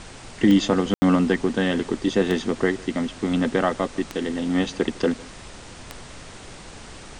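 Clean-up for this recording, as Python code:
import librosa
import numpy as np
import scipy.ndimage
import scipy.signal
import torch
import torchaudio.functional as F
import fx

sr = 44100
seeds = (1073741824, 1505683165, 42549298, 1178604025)

y = fx.fix_declick_ar(x, sr, threshold=10.0)
y = fx.fix_ambience(y, sr, seeds[0], print_start_s=5.29, print_end_s=5.79, start_s=0.94, end_s=1.02)
y = fx.noise_reduce(y, sr, print_start_s=5.29, print_end_s=5.79, reduce_db=26.0)
y = fx.fix_echo_inverse(y, sr, delay_ms=155, level_db=-23.0)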